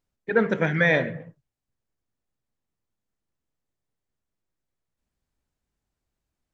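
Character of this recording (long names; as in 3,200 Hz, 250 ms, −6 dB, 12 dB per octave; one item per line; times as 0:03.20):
background noise floor −85 dBFS
spectral slope −5.0 dB per octave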